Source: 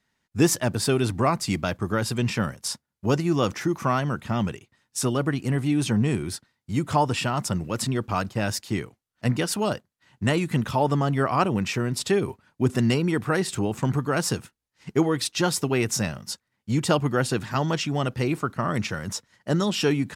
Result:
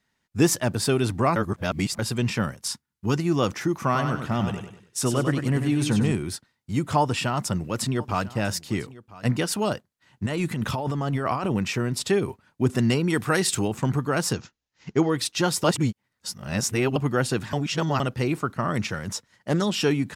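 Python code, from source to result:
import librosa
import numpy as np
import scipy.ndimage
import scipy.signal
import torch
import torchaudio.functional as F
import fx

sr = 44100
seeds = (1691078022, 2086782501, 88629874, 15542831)

y = fx.peak_eq(x, sr, hz=590.0, db=-14.5, octaves=0.5, at=(2.64, 3.18))
y = fx.echo_feedback(y, sr, ms=97, feedback_pct=38, wet_db=-6.5, at=(3.83, 6.12))
y = fx.echo_single(y, sr, ms=998, db=-19.5, at=(7.0, 9.31))
y = fx.over_compress(y, sr, threshold_db=-26.0, ratio=-1.0, at=(10.26, 11.52))
y = fx.high_shelf(y, sr, hz=2400.0, db=9.0, at=(13.1, 13.68))
y = fx.resample_bad(y, sr, factor=3, down='none', up='filtered', at=(14.33, 15.1))
y = fx.doppler_dist(y, sr, depth_ms=0.23, at=(18.94, 19.62))
y = fx.edit(y, sr, fx.reverse_span(start_s=1.36, length_s=0.63),
    fx.reverse_span(start_s=15.64, length_s=1.32),
    fx.reverse_span(start_s=17.53, length_s=0.47), tone=tone)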